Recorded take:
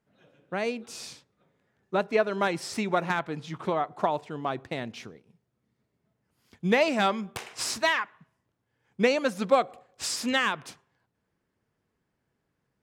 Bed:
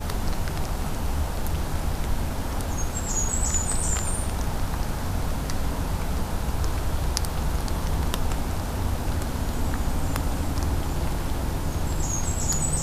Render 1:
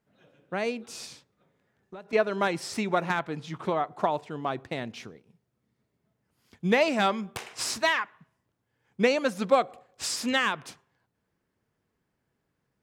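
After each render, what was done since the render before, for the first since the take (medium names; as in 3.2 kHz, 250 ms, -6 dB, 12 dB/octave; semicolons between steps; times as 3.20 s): 1.05–2.13 s: compression, threshold -40 dBFS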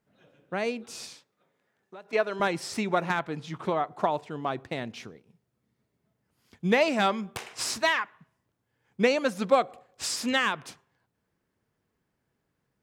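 1.10–2.40 s: high-pass 400 Hz 6 dB/octave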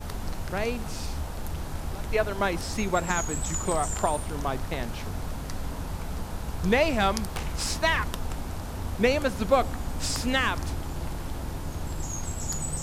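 add bed -6.5 dB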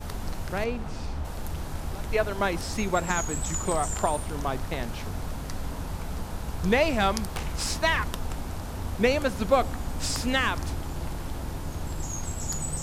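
0.64–1.25 s: low-pass 2.3 kHz 6 dB/octave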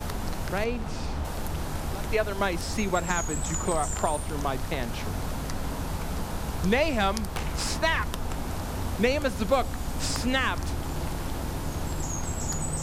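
three bands compressed up and down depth 40%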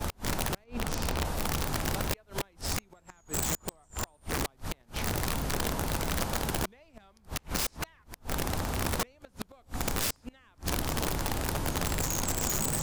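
inverted gate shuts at -17 dBFS, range -34 dB; integer overflow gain 23.5 dB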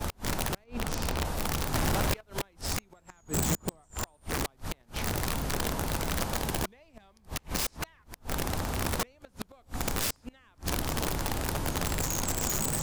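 1.74–2.21 s: waveshaping leveller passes 3; 3.22–3.81 s: peaking EQ 170 Hz +7.5 dB 2.7 oct; 6.34–7.63 s: band-stop 1.4 kHz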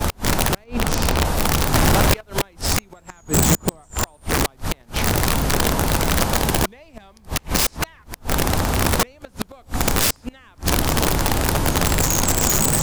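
trim +12 dB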